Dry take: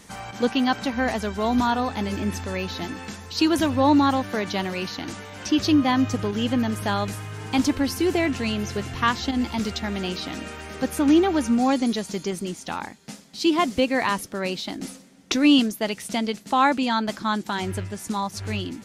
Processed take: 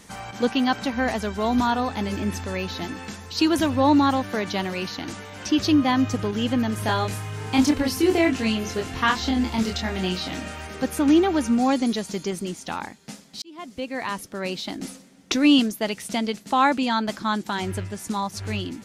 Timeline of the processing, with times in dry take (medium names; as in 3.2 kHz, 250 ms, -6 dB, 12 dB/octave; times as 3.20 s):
6.75–10.67 s: doubling 27 ms -3 dB
13.42–14.68 s: fade in